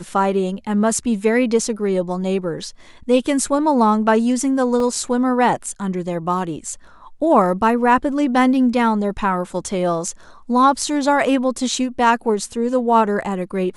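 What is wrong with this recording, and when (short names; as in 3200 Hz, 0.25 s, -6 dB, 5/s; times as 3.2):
4.8 gap 2.3 ms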